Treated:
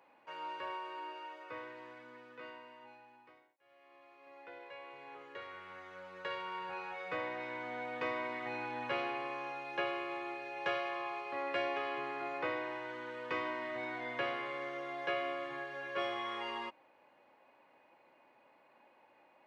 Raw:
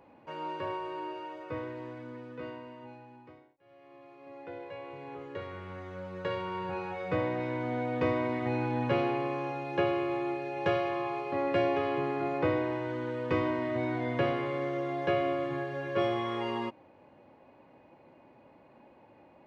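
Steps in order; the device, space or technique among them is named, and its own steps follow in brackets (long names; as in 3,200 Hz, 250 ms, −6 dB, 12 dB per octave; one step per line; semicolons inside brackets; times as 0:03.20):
filter by subtraction (in parallel: low-pass filter 1,600 Hz 12 dB per octave + polarity inversion)
on the sum: level −3 dB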